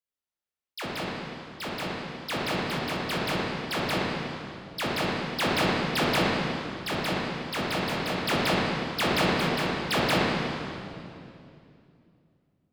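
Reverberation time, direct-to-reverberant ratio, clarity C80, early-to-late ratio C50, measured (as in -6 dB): 2.6 s, -5.5 dB, -0.5 dB, -2.0 dB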